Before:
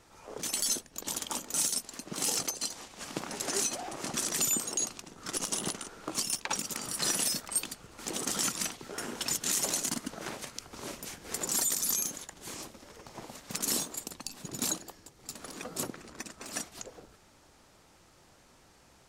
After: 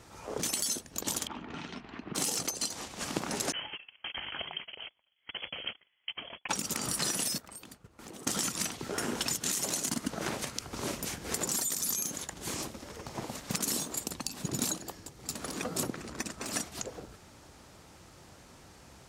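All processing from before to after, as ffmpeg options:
ffmpeg -i in.wav -filter_complex "[0:a]asettb=1/sr,asplit=3[link_01][link_02][link_03];[link_01]atrim=end=1.274[link_04];[link_02]atrim=start=1.27:end=2.15,asetpts=PTS-STARTPTS,afade=type=in:duration=0.004:curve=qsin,afade=type=out:start_time=0.876:duration=0.004:curve=qsin,lowpass=frequency=2800:width=0.5412,lowpass=frequency=2800:width=1.3066,equalizer=frequency=540:width_type=o:width=0.32:gain=-12,acompressor=threshold=-43dB:ratio=4:attack=3.2:release=140:knee=1:detection=peak[link_05];[link_03]atrim=start=2.146[link_06];[link_04][link_05]acrossfade=duration=0.004:curve1=hsin:curve2=qsin[link_07];[link_07][link_06]acrossfade=duration=0.004:curve1=qsin:curve2=hsin,asettb=1/sr,asplit=3[link_08][link_09][link_10];[link_08]atrim=end=3.524[link_11];[link_09]atrim=start=3.52:end=6.49,asetpts=PTS-STARTPTS,afade=type=in:duration=0.004:curve=qsin,afade=type=out:start_time=2.966:duration=0.004:curve=qsin,agate=range=-31dB:threshold=-37dB:ratio=16:release=100:detection=peak,acompressor=threshold=-41dB:ratio=1.5:attack=3.2:release=140:knee=1:detection=peak,lowpass=frequency=2900:width_type=q:width=0.5098,lowpass=frequency=2900:width_type=q:width=0.6013,lowpass=frequency=2900:width_type=q:width=0.9,lowpass=frequency=2900:width_type=q:width=2.563,afreqshift=-3400[link_12];[link_10]atrim=start=6.486[link_13];[link_11][link_12]acrossfade=duration=0.004:curve1=hsin:curve2=qsin[link_14];[link_14][link_13]acrossfade=duration=0.004:curve1=qsin:curve2=hsin,asettb=1/sr,asplit=3[link_15][link_16][link_17];[link_15]atrim=end=7.384[link_18];[link_16]atrim=start=7.38:end=8.27,asetpts=PTS-STARTPTS,afade=type=in:duration=0.004:curve=qsin,afade=type=out:start_time=0.886:duration=0.004:curve=qsin,agate=range=-33dB:threshold=-43dB:ratio=3:release=100:detection=peak,equalizer=frequency=6200:width_type=o:width=2.5:gain=-6,acompressor=threshold=-52dB:ratio=4:attack=3.2:release=140:knee=1:detection=peak[link_19];[link_17]atrim=start=8.266[link_20];[link_18][link_19]acrossfade=duration=0.004:curve1=hsin:curve2=qsin[link_21];[link_21][link_20]acrossfade=duration=0.004:curve1=qsin:curve2=hsin,acompressor=threshold=-34dB:ratio=6,highpass=52,lowshelf=frequency=190:gain=6.5,volume=5dB" out.wav

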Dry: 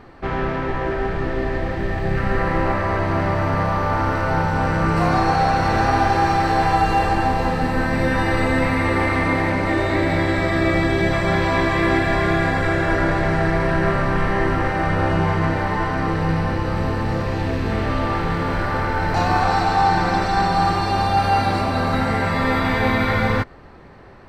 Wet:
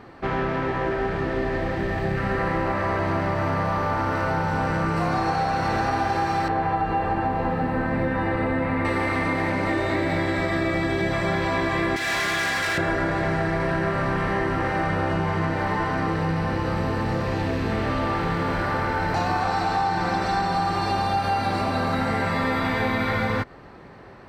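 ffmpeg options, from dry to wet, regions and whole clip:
ffmpeg -i in.wav -filter_complex "[0:a]asettb=1/sr,asplit=3[link_01][link_02][link_03];[link_01]atrim=end=6.484[link_04];[link_02]atrim=start=6.48:end=8.85,asetpts=PTS-STARTPTS,afade=type=in:duration=0.004:curve=qsin,afade=type=out:start_time=2.366:duration=0.004:curve=qsin,acrossover=split=5100[link_05][link_06];[link_06]acompressor=threshold=-54dB:ratio=4:attack=1:release=60[link_07];[link_05][link_07]amix=inputs=2:normalize=0,equalizer=frequency=5900:width_type=o:width=2:gain=-13.5[link_08];[link_03]atrim=start=8.846[link_09];[link_04][link_08]acrossfade=duration=0.004:curve1=hsin:curve2=qsin[link_10];[link_10][link_09]acrossfade=duration=0.004:curve1=qsin:curve2=hsin,asettb=1/sr,asplit=3[link_11][link_12][link_13];[link_11]atrim=end=11.964[link_14];[link_12]atrim=start=11.96:end=12.78,asetpts=PTS-STARTPTS,afade=type=in:duration=0.004:curve=qsin,afade=type=out:start_time=0.816:duration=0.004:curve=qsin,tiltshelf=frequency=1100:gain=-10,asoftclip=type=hard:threshold=-21dB[link_15];[link_13]atrim=start=12.776[link_16];[link_14][link_15]acrossfade=duration=0.004:curve1=hsin:curve2=qsin[link_17];[link_17][link_16]acrossfade=duration=0.004:curve1=qsin:curve2=hsin,highpass=44,equalizer=frequency=69:width=2.3:gain=-7.5,acompressor=threshold=-20dB:ratio=6" out.wav

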